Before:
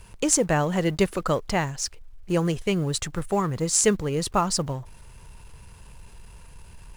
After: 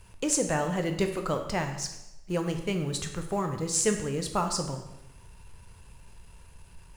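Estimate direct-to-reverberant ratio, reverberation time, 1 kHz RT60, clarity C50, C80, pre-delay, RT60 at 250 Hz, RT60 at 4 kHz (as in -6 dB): 4.5 dB, 0.95 s, 0.90 s, 8.0 dB, 10.0 dB, 8 ms, 0.95 s, 0.85 s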